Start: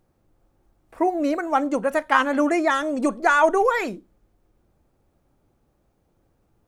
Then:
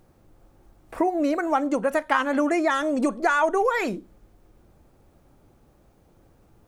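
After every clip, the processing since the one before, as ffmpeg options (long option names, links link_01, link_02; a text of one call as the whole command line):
ffmpeg -i in.wav -af "acompressor=threshold=-33dB:ratio=2.5,volume=8.5dB" out.wav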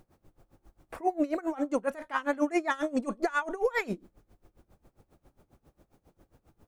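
ffmpeg -i in.wav -af "alimiter=limit=-16dB:level=0:latency=1:release=20,aeval=exprs='val(0)*pow(10,-22*(0.5-0.5*cos(2*PI*7.4*n/s))/20)':channel_layout=same" out.wav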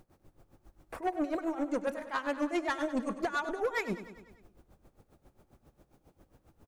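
ffmpeg -i in.wav -filter_complex "[0:a]asoftclip=type=tanh:threshold=-25dB,asplit=2[link_01][link_02];[link_02]aecho=0:1:99|198|297|396|495|594:0.224|0.132|0.0779|0.046|0.0271|0.016[link_03];[link_01][link_03]amix=inputs=2:normalize=0" out.wav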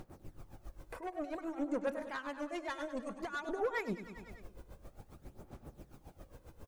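ffmpeg -i in.wav -af "acompressor=threshold=-50dB:ratio=2,alimiter=level_in=14dB:limit=-24dB:level=0:latency=1:release=408,volume=-14dB,aphaser=in_gain=1:out_gain=1:delay=2:decay=0.4:speed=0.54:type=sinusoidal,volume=6.5dB" out.wav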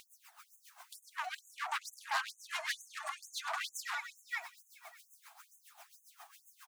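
ffmpeg -i in.wav -af "aecho=1:1:576:0.335,aeval=exprs='0.015*(abs(mod(val(0)/0.015+3,4)-2)-1)':channel_layout=same,afftfilt=real='re*gte(b*sr/1024,620*pow(6300/620,0.5+0.5*sin(2*PI*2.2*pts/sr)))':imag='im*gte(b*sr/1024,620*pow(6300/620,0.5+0.5*sin(2*PI*2.2*pts/sr)))':win_size=1024:overlap=0.75,volume=10.5dB" out.wav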